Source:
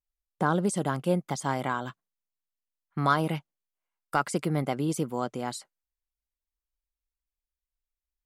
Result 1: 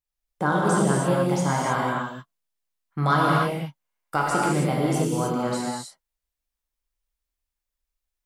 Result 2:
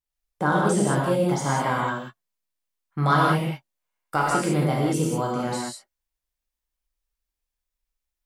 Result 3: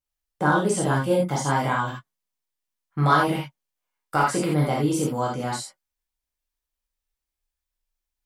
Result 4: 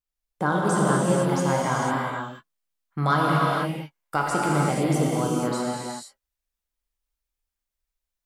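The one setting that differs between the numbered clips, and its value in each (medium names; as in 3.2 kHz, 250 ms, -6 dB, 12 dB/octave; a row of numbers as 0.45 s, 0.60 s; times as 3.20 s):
gated-style reverb, gate: 340 ms, 220 ms, 110 ms, 520 ms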